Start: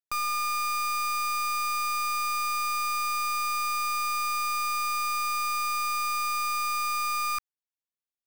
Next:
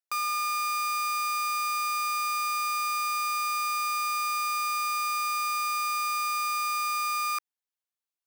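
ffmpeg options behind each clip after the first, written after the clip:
ffmpeg -i in.wav -af "highpass=480" out.wav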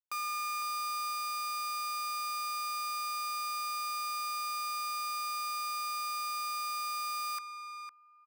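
ffmpeg -i in.wav -filter_complex "[0:a]asplit=2[link_01][link_02];[link_02]adelay=506,lowpass=frequency=4600:poles=1,volume=-7dB,asplit=2[link_03][link_04];[link_04]adelay=506,lowpass=frequency=4600:poles=1,volume=0.25,asplit=2[link_05][link_06];[link_06]adelay=506,lowpass=frequency=4600:poles=1,volume=0.25[link_07];[link_01][link_03][link_05][link_07]amix=inputs=4:normalize=0,anlmdn=0.251,volume=-6.5dB" out.wav

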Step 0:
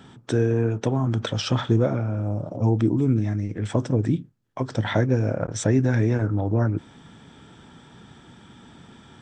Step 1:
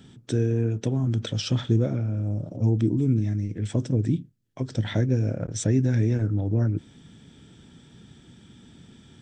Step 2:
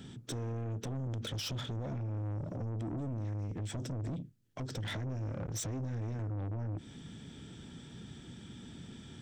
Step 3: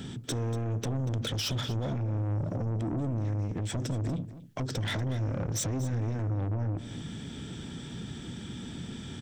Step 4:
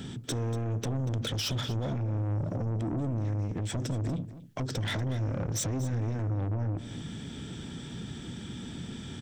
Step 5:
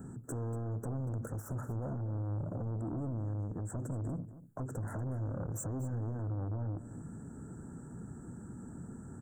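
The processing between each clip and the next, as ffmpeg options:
ffmpeg -i in.wav -af "equalizer=frequency=1000:width_type=o:width=1.8:gain=-14" out.wav
ffmpeg -i in.wav -af "alimiter=limit=-20dB:level=0:latency=1:release=35,acompressor=threshold=-29dB:ratio=6,asoftclip=type=tanh:threshold=-36dB,volume=1.5dB" out.wav
ffmpeg -i in.wav -filter_complex "[0:a]asplit=2[link_01][link_02];[link_02]acompressor=threshold=-45dB:ratio=6,volume=-1.5dB[link_03];[link_01][link_03]amix=inputs=2:normalize=0,aecho=1:1:238:0.178,volume=4dB" out.wav
ffmpeg -i in.wav -af anull out.wav
ffmpeg -i in.wav -af "asuperstop=centerf=3400:order=12:qfactor=0.61,volume=-6dB" out.wav

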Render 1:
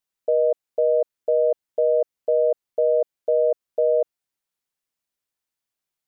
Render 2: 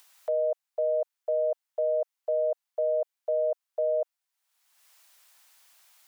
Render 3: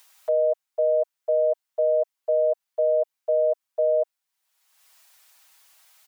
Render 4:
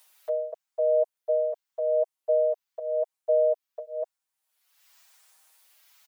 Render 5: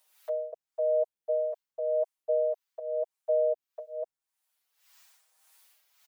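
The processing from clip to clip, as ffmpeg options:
ffmpeg -i in.wav -af "highpass=frequency=680:width=0.5412,highpass=frequency=680:width=1.3066,acompressor=mode=upward:threshold=-39dB:ratio=2.5" out.wav
ffmpeg -i in.wav -af "aecho=1:1:6.3:0.92" out.wav
ffmpeg -i in.wav -filter_complex "[0:a]asplit=2[link_01][link_02];[link_02]adelay=6.1,afreqshift=-0.9[link_03];[link_01][link_03]amix=inputs=2:normalize=1" out.wav
ffmpeg -i in.wav -filter_complex "[0:a]acrossover=split=580[link_01][link_02];[link_01]aeval=exprs='val(0)*(1-0.7/2+0.7/2*cos(2*PI*1.7*n/s))':channel_layout=same[link_03];[link_02]aeval=exprs='val(0)*(1-0.7/2-0.7/2*cos(2*PI*1.7*n/s))':channel_layout=same[link_04];[link_03][link_04]amix=inputs=2:normalize=0" out.wav

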